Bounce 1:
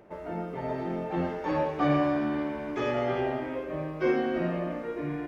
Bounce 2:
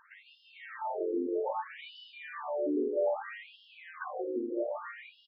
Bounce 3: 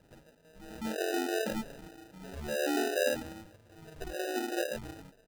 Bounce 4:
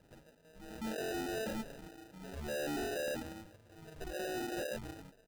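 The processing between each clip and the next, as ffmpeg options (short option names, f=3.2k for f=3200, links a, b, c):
-filter_complex "[0:a]acrossover=split=140[a][b];[b]acompressor=threshold=-34dB:ratio=4[c];[a][c]amix=inputs=2:normalize=0,aecho=1:1:41|158:0.473|0.447,afftfilt=real='re*between(b*sr/1024,350*pow(3900/350,0.5+0.5*sin(2*PI*0.62*pts/sr))/1.41,350*pow(3900/350,0.5+0.5*sin(2*PI*0.62*pts/sr))*1.41)':imag='im*between(b*sr/1024,350*pow(3900/350,0.5+0.5*sin(2*PI*0.62*pts/sr))/1.41,350*pow(3900/350,0.5+0.5*sin(2*PI*0.62*pts/sr))*1.41)':win_size=1024:overlap=0.75,volume=6dB"
-af "acrusher=samples=40:mix=1:aa=0.000001"
-af "volume=33.5dB,asoftclip=hard,volume=-33.5dB,volume=-2dB"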